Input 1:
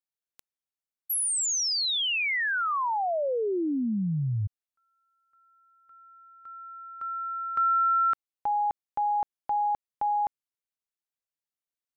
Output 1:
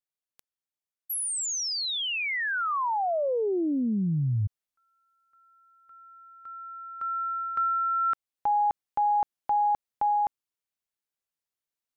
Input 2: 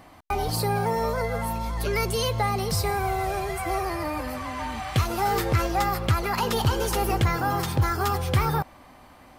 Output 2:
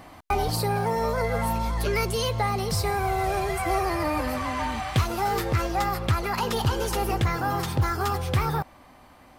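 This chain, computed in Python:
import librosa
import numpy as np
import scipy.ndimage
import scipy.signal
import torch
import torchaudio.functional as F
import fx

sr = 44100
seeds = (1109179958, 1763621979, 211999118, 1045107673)

y = fx.rider(x, sr, range_db=4, speed_s=0.5)
y = fx.doppler_dist(y, sr, depth_ms=0.13)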